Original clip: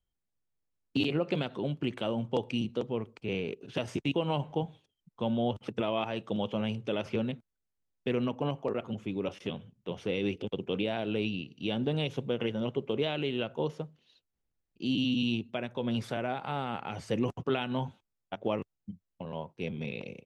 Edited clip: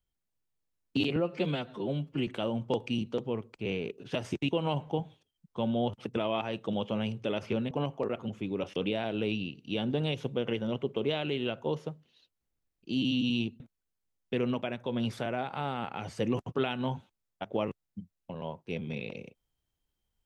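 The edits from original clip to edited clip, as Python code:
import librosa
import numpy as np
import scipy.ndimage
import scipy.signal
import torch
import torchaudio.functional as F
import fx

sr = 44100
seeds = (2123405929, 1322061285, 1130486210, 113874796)

y = fx.edit(x, sr, fx.stretch_span(start_s=1.16, length_s=0.74, factor=1.5),
    fx.move(start_s=7.34, length_s=1.02, to_s=15.53),
    fx.cut(start_s=9.41, length_s=1.28), tone=tone)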